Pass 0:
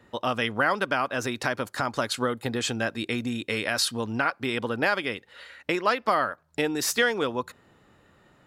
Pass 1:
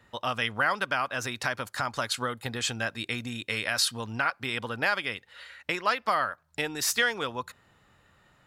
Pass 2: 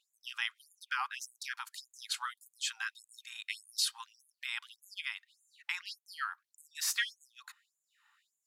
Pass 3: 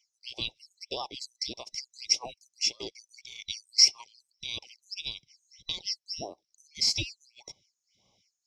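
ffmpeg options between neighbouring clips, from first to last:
-af "equalizer=f=330:w=0.69:g=-9.5"
-af "afftfilt=real='re*gte(b*sr/1024,750*pow(6500/750,0.5+0.5*sin(2*PI*1.7*pts/sr)))':imag='im*gte(b*sr/1024,750*pow(6500/750,0.5+0.5*sin(2*PI*1.7*pts/sr)))':win_size=1024:overlap=0.75,volume=-5.5dB"
-af "afftfilt=real='real(if(between(b,1,1012),(2*floor((b-1)/92)+1)*92-b,b),0)':imag='imag(if(between(b,1,1012),(2*floor((b-1)/92)+1)*92-b,b),0)*if(between(b,1,1012),-1,1)':win_size=2048:overlap=0.75,lowpass=f=5.4k:t=q:w=10,volume=-2dB"

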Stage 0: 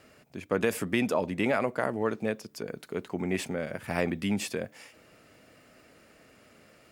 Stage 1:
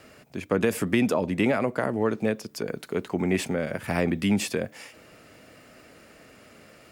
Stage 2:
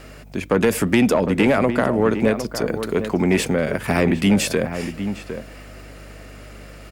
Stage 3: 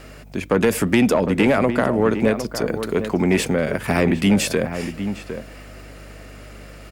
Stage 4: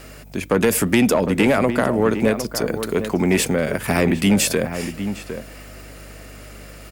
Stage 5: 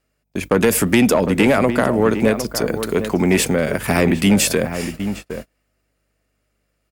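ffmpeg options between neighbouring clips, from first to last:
-filter_complex "[0:a]acrossover=split=390[a][b];[b]acompressor=threshold=-34dB:ratio=2[c];[a][c]amix=inputs=2:normalize=0,volume=6dB"
-filter_complex "[0:a]aeval=exprs='0.355*sin(PI/2*1.58*val(0)/0.355)':c=same,aeval=exprs='val(0)+0.00794*(sin(2*PI*50*n/s)+sin(2*PI*2*50*n/s)/2+sin(2*PI*3*50*n/s)/3+sin(2*PI*4*50*n/s)/4+sin(2*PI*5*50*n/s)/5)':c=same,asplit=2[a][b];[b]adelay=758,volume=-9dB,highshelf=f=4k:g=-17.1[c];[a][c]amix=inputs=2:normalize=0"
-af anull
-af "highshelf=f=6.7k:g=9.5"
-af "agate=range=-33dB:threshold=-30dB:ratio=16:detection=peak,volume=2dB"

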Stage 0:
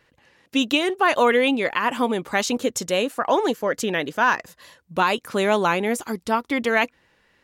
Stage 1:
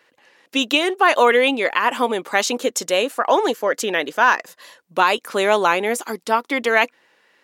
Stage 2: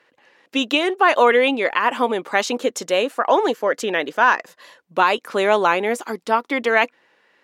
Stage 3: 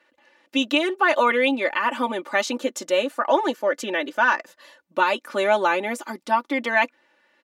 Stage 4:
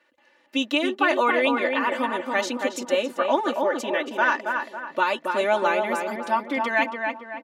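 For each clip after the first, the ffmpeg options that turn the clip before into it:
-af "highpass=340,volume=4dB"
-af "aemphasis=mode=reproduction:type=cd"
-af "aecho=1:1:3.4:0.83,volume=-5.5dB"
-filter_complex "[0:a]asplit=2[a][b];[b]adelay=276,lowpass=f=2.2k:p=1,volume=-4dB,asplit=2[c][d];[d]adelay=276,lowpass=f=2.2k:p=1,volume=0.44,asplit=2[e][f];[f]adelay=276,lowpass=f=2.2k:p=1,volume=0.44,asplit=2[g][h];[h]adelay=276,lowpass=f=2.2k:p=1,volume=0.44,asplit=2[i][j];[j]adelay=276,lowpass=f=2.2k:p=1,volume=0.44,asplit=2[k][l];[l]adelay=276,lowpass=f=2.2k:p=1,volume=0.44[m];[a][c][e][g][i][k][m]amix=inputs=7:normalize=0,volume=-2.5dB"

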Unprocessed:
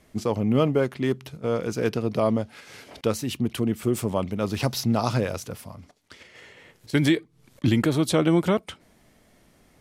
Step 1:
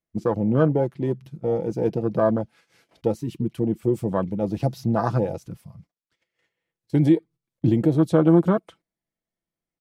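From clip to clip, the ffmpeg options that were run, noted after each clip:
-af "agate=range=-18dB:threshold=-45dB:ratio=16:detection=peak,afwtdn=0.0501,aecho=1:1:6:0.42,volume=1.5dB"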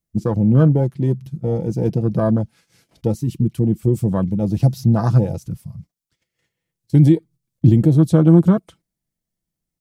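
-af "bass=f=250:g=13,treble=f=4k:g=10,volume=-1.5dB"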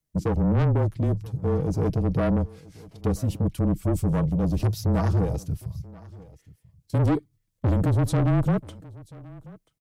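-af "asoftclip=type=tanh:threshold=-18.5dB,afreqshift=-24,aecho=1:1:984:0.0841"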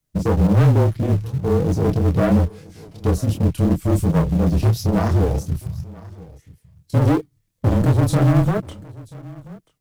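-filter_complex "[0:a]flanger=delay=22.5:depth=7.4:speed=2.9,asplit=2[a][b];[b]acrusher=bits=3:mode=log:mix=0:aa=0.000001,volume=-10dB[c];[a][c]amix=inputs=2:normalize=0,volume=6.5dB"

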